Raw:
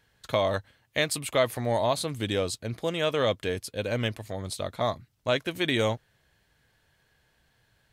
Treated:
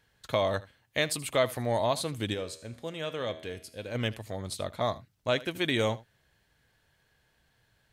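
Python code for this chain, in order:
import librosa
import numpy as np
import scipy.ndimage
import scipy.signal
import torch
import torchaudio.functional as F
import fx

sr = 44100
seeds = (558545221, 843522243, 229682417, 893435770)

y = fx.comb_fb(x, sr, f0_hz=80.0, decay_s=0.76, harmonics='all', damping=0.0, mix_pct=60, at=(2.33, 3.94), fade=0.02)
y = y + 10.0 ** (-19.5 / 20.0) * np.pad(y, (int(78 * sr / 1000.0), 0))[:len(y)]
y = F.gain(torch.from_numpy(y), -2.0).numpy()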